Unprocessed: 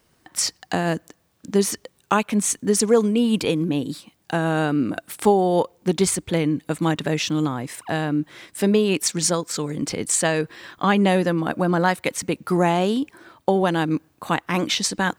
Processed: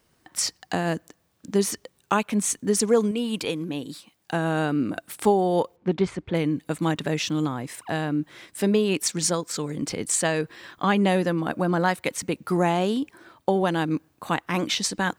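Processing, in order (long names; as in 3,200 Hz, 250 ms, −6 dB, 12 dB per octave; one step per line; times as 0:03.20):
0:03.11–0:04.32: low-shelf EQ 440 Hz −7 dB
0:05.76–0:06.35: low-pass filter 2,400 Hz 12 dB per octave
level −3 dB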